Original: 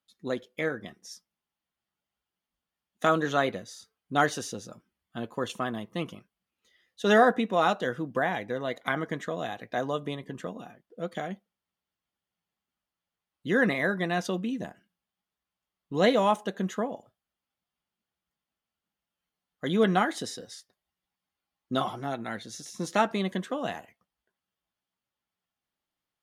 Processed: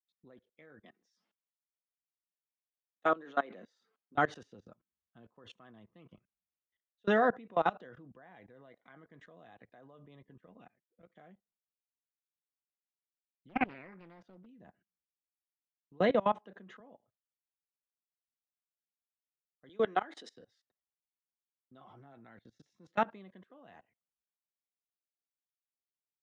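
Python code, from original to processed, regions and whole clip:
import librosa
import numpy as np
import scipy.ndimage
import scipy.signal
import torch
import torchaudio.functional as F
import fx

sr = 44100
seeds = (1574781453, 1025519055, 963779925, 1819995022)

y = fx.chain(x, sr, fx.highpass(hz=210.0, slope=24),
    fx.sustainer(db_per_s=120.0), at=(0.81, 4.15))
y = fx.chain(y, sr, fx.peak_eq(hz=2200.0, db=11.5, octaves=0.58),
    fx.level_steps(step_db=15), at=(10.46, 11.15))
y = fx.chain(y, sr, fx.high_shelf(hz=4100.0, db=-4.5),
    fx.doppler_dist(depth_ms=0.87), at=(13.49, 14.46))
y = fx.chain(y, sr, fx.air_absorb(metres=64.0),
    fx.band_squash(depth_pct=70), at=(16.09, 16.8))
y = fx.chain(y, sr, fx.highpass(hz=260.0, slope=24),
    fx.high_shelf(hz=4200.0, db=5.0), at=(19.69, 20.34))
y = scipy.signal.sosfilt(scipy.signal.butter(2, 2700.0, 'lowpass', fs=sr, output='sos'), y)
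y = fx.level_steps(y, sr, step_db=23)
y = fx.band_widen(y, sr, depth_pct=40)
y = F.gain(torch.from_numpy(y), -6.0).numpy()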